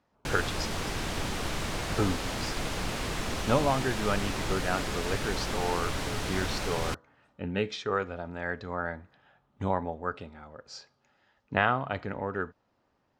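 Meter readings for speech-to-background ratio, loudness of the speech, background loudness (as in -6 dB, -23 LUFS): 1.0 dB, -32.5 LUFS, -33.5 LUFS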